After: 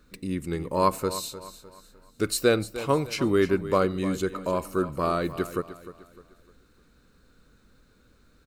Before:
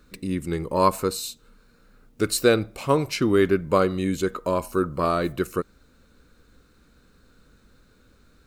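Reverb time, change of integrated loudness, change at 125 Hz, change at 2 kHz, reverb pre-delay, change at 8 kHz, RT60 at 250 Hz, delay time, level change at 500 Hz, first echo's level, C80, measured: no reverb audible, −3.0 dB, −2.5 dB, −3.0 dB, no reverb audible, −3.0 dB, no reverb audible, 303 ms, −3.0 dB, −14.0 dB, no reverb audible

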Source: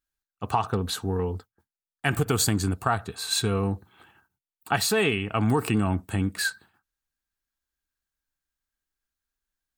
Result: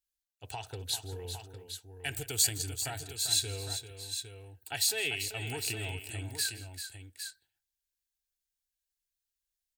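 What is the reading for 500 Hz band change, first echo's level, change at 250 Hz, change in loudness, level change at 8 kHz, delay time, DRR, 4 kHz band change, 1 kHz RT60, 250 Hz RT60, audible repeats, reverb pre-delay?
−14.5 dB, −19.5 dB, −21.0 dB, −7.0 dB, +0.5 dB, 166 ms, no reverb audible, −1.5 dB, no reverb audible, no reverb audible, 3, no reverb audible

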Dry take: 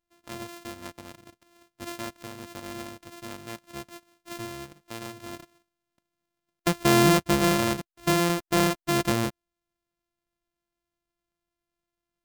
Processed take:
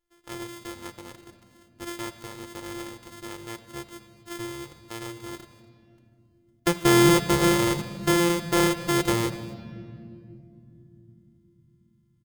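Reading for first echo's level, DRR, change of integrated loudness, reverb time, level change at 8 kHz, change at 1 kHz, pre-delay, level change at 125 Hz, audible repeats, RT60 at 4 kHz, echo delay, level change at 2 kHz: −21.0 dB, 8.5 dB, +0.5 dB, 2.5 s, +2.0 dB, 0.0 dB, 6 ms, +1.0 dB, 1, 1.7 s, 242 ms, +1.5 dB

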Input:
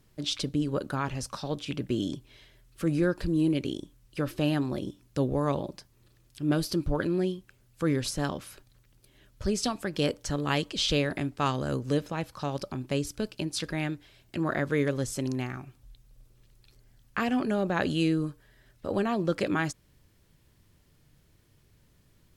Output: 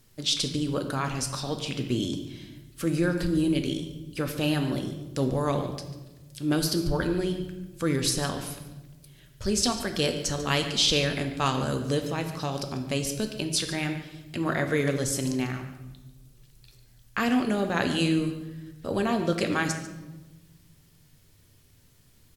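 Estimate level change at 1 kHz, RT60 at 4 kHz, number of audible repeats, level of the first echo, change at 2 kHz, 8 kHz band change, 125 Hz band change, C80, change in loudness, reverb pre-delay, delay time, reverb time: +2.0 dB, 0.85 s, 1, −15.0 dB, +3.5 dB, +8.0 dB, +2.0 dB, 9.5 dB, +2.5 dB, 4 ms, 144 ms, 1.2 s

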